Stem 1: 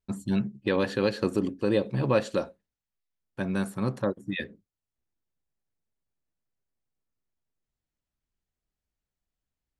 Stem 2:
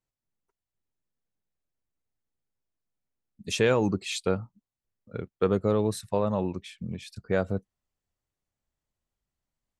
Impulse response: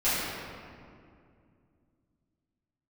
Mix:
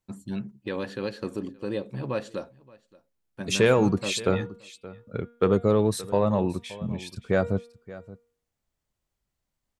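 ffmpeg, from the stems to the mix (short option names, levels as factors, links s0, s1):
-filter_complex "[0:a]volume=0.501,asplit=2[s0][s1];[s1]volume=0.0668[s2];[1:a]bandreject=f=236.5:t=h:w=4,bandreject=f=473:t=h:w=4,bandreject=f=709.5:t=h:w=4,bandreject=f=946:t=h:w=4,bandreject=f=1182.5:t=h:w=4,bandreject=f=1419:t=h:w=4,bandreject=f=1655.5:t=h:w=4,bandreject=f=1892:t=h:w=4,bandreject=f=2128.5:t=h:w=4,bandreject=f=2365:t=h:w=4,bandreject=f=2601.5:t=h:w=4,bandreject=f=2838:t=h:w=4,bandreject=f=3074.5:t=h:w=4,bandreject=f=3311:t=h:w=4,bandreject=f=3547.5:t=h:w=4,bandreject=f=3784:t=h:w=4,acontrast=89,volume=0.668,asplit=2[s3][s4];[s4]volume=0.126[s5];[s2][s5]amix=inputs=2:normalize=0,aecho=0:1:574:1[s6];[s0][s3][s6]amix=inputs=3:normalize=0"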